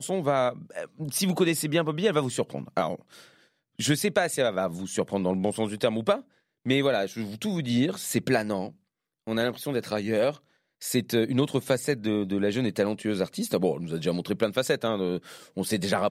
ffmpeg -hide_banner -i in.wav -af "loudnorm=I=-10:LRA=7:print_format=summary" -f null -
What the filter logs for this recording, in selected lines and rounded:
Input Integrated:    -27.4 LUFS
Input True Peak:     -10.0 dBTP
Input LRA:             1.0 LU
Input Threshold:     -37.8 LUFS